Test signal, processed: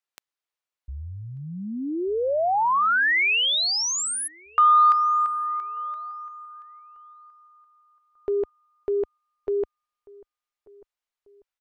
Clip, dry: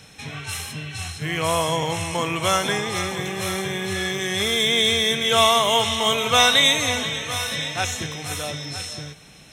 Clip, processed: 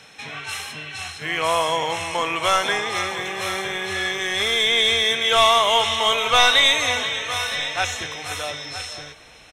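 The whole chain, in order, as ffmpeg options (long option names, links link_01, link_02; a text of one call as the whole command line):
ffmpeg -i in.wav -filter_complex "[0:a]lowshelf=frequency=150:gain=-8,asplit=2[link_01][link_02];[link_02]highpass=frequency=720:poles=1,volume=9dB,asoftclip=type=tanh:threshold=-1.5dB[link_03];[link_01][link_03]amix=inputs=2:normalize=0,lowpass=frequency=2900:poles=1,volume=-6dB,asubboost=boost=10:cutoff=53,asplit=2[link_04][link_05];[link_05]adelay=1191,lowpass=frequency=1200:poles=1,volume=-23dB,asplit=2[link_06][link_07];[link_07]adelay=1191,lowpass=frequency=1200:poles=1,volume=0.43,asplit=2[link_08][link_09];[link_09]adelay=1191,lowpass=frequency=1200:poles=1,volume=0.43[link_10];[link_06][link_08][link_10]amix=inputs=3:normalize=0[link_11];[link_04][link_11]amix=inputs=2:normalize=0" out.wav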